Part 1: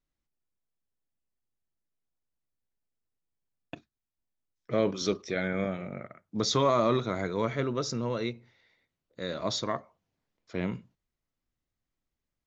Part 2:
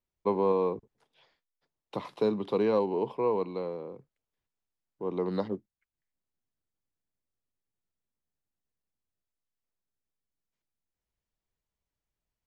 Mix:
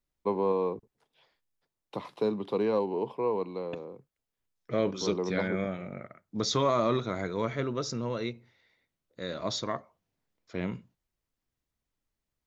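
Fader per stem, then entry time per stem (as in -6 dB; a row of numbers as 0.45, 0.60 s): -1.5, -1.5 dB; 0.00, 0.00 s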